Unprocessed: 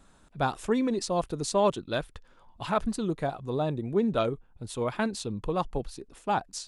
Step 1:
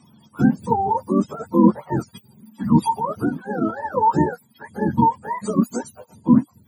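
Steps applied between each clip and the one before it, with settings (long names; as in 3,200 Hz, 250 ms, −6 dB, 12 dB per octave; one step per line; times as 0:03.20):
frequency axis turned over on the octave scale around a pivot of 450 Hz
hollow resonant body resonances 220/920/3,300 Hz, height 13 dB, ringing for 45 ms
level +4.5 dB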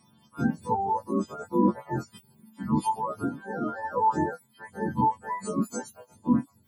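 every partial snapped to a pitch grid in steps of 2 semitones
level −6.5 dB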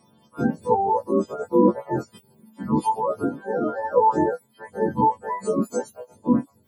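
parametric band 500 Hz +12.5 dB 1.2 octaves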